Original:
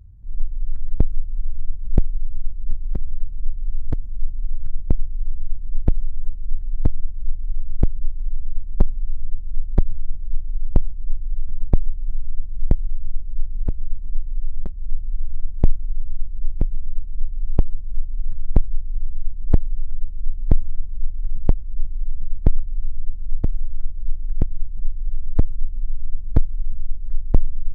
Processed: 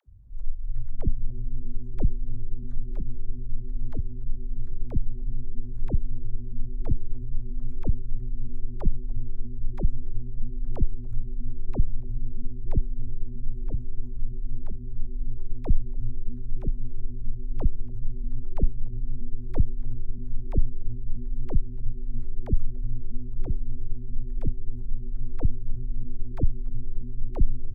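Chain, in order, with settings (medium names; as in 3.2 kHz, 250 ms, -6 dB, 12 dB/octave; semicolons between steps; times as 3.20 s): phase dispersion lows, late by 69 ms, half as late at 400 Hz; wow and flutter 120 cents; frequency-shifting echo 285 ms, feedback 43%, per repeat -130 Hz, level -22 dB; trim -6 dB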